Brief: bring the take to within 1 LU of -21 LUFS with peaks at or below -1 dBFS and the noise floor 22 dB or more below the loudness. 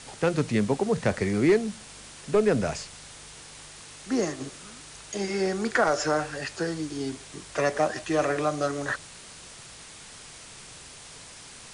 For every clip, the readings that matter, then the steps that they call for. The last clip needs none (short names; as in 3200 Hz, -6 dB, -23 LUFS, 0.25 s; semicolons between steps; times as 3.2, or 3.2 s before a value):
noise floor -46 dBFS; noise floor target -49 dBFS; loudness -27.0 LUFS; peak -13.0 dBFS; loudness target -21.0 LUFS
-> denoiser 6 dB, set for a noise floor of -46 dBFS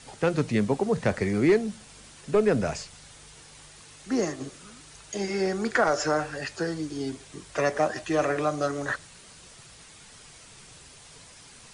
noise floor -50 dBFS; loudness -27.0 LUFS; peak -13.0 dBFS; loudness target -21.0 LUFS
-> gain +6 dB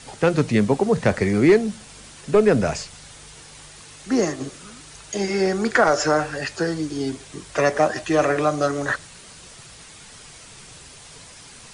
loudness -21.0 LUFS; peak -7.0 dBFS; noise floor -44 dBFS